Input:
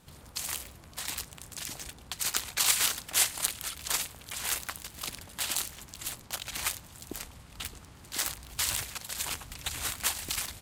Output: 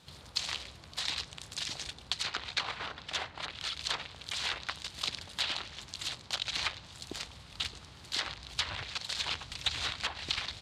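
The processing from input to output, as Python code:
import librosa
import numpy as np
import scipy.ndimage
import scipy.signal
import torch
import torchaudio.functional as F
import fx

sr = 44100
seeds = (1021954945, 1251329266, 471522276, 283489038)

y = scipy.signal.sosfilt(scipy.signal.butter(2, 60.0, 'highpass', fs=sr, output='sos'), x)
y = fx.env_lowpass_down(y, sr, base_hz=1200.0, full_db=-25.0)
y = fx.graphic_eq_10(y, sr, hz=(250, 4000, 16000), db=(-4, 10, -12))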